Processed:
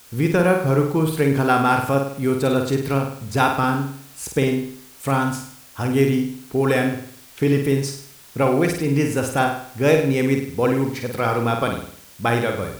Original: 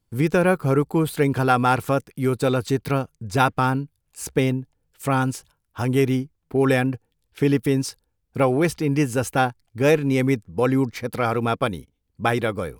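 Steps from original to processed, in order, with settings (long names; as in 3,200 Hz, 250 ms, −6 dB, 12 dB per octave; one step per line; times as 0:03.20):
bit-depth reduction 8 bits, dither triangular
flutter between parallel walls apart 8.7 metres, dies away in 0.59 s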